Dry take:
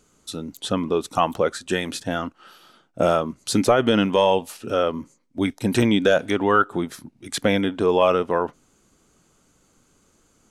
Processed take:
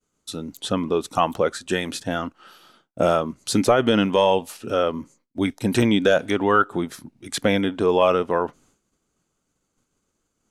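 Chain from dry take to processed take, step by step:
downward expander −51 dBFS

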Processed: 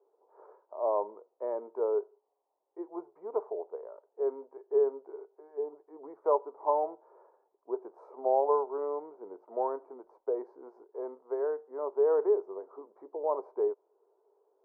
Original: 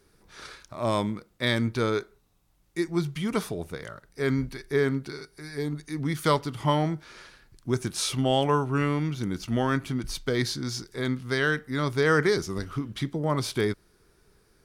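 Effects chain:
elliptic band-pass filter 410–960 Hz, stop band 60 dB

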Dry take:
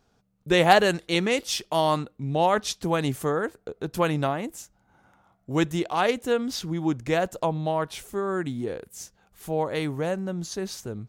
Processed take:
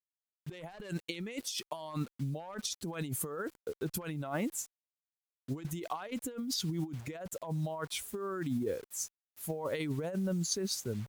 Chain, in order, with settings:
spectral dynamics exaggerated over time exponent 1.5
high-pass filter 190 Hz 6 dB per octave
bit-depth reduction 10 bits, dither none
asymmetric clip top −19.5 dBFS
compressor whose output falls as the input rises −38 dBFS, ratio −1

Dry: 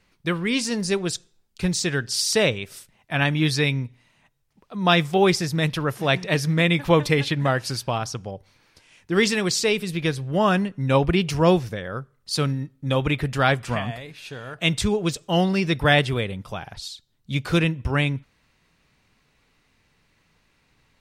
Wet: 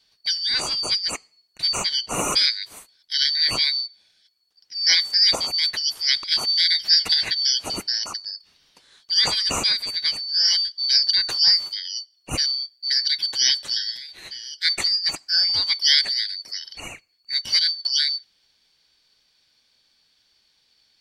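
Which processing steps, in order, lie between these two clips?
band-splitting scrambler in four parts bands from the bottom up 4321

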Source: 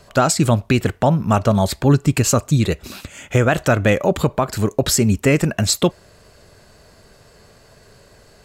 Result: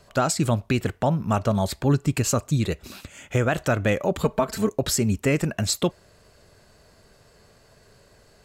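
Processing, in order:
0:04.24–0:04.70: comb filter 4.5 ms, depth 92%
level −6.5 dB

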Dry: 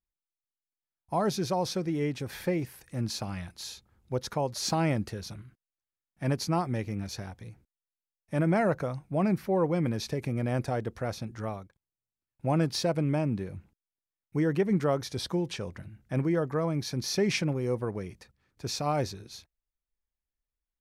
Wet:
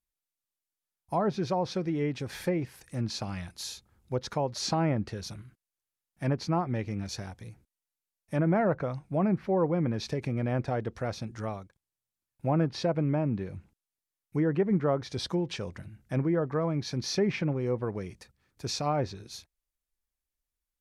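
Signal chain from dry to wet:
treble cut that deepens with the level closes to 1,700 Hz, closed at −23 dBFS
high-shelf EQ 7,200 Hz +7.5 dB

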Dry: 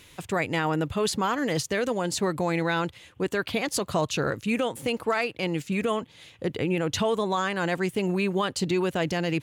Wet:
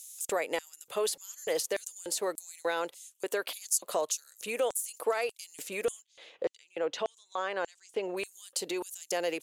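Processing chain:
high-pass filter 160 Hz
parametric band 12,000 Hz +14 dB 1.2 octaves
downward compressor, threshold −27 dBFS, peak gain reduction 11 dB
auto-filter high-pass square 1.7 Hz 500–6,700 Hz
0:06.02–0:08.17: high-frequency loss of the air 150 metres
level −2.5 dB

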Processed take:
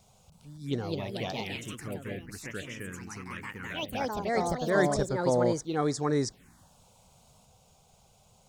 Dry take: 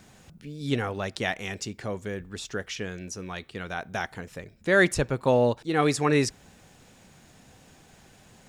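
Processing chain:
delay with pitch and tempo change per echo 320 ms, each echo +3 semitones, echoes 3
phaser swept by the level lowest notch 280 Hz, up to 2,700 Hz, full sweep at −21 dBFS
level −4.5 dB

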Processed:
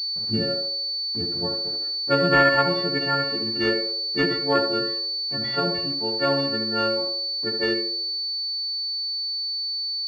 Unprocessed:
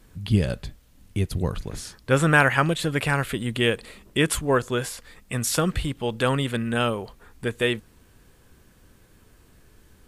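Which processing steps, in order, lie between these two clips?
every partial snapped to a pitch grid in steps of 4 semitones
high-pass filter 180 Hz 12 dB per octave
hum removal 369.6 Hz, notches 10
low-pass that shuts in the quiet parts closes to 370 Hz, open at −15 dBFS
harmonic generator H 7 −31 dB, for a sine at −2.5 dBFS
centre clipping without the shift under −42 dBFS
high-frequency loss of the air 190 metres
on a send: feedback echo with a band-pass in the loop 72 ms, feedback 54%, band-pass 490 Hz, level −3 dB
on the sum: switching amplifier with a slow clock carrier 4,500 Hz

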